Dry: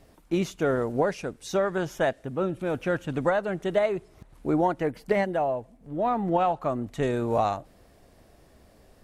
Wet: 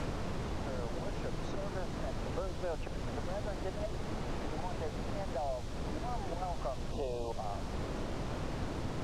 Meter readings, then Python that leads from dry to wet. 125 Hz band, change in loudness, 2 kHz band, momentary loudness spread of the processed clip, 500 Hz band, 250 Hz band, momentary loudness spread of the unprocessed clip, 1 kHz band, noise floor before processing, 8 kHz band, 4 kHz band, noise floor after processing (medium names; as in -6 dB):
-4.5 dB, -12.0 dB, -12.5 dB, 2 LU, -13.0 dB, -11.5 dB, 6 LU, -12.5 dB, -57 dBFS, no reading, -4.0 dB, -40 dBFS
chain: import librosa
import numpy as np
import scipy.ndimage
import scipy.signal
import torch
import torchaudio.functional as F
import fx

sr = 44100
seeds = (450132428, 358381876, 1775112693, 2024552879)

p1 = fx.level_steps(x, sr, step_db=22)
p2 = x + (p1 * librosa.db_to_amplitude(-2.0))
p3 = scipy.signal.sosfilt(scipy.signal.butter(4, 620.0, 'highpass', fs=sr, output='sos'), p2)
p4 = fx.auto_swell(p3, sr, attack_ms=673.0)
p5 = fx.quant_dither(p4, sr, seeds[0], bits=6, dither='triangular')
p6 = scipy.signal.sosfilt(scipy.signal.butter(2, 5300.0, 'lowpass', fs=sr, output='sos'), p5)
p7 = fx.tilt_eq(p6, sr, slope=-4.0)
p8 = fx.spec_box(p7, sr, start_s=6.91, length_s=0.4, low_hz=1100.0, high_hz=2400.0, gain_db=-14)
p9 = fx.peak_eq(p8, sr, hz=2100.0, db=-7.0, octaves=2.1)
y = fx.band_squash(p9, sr, depth_pct=100)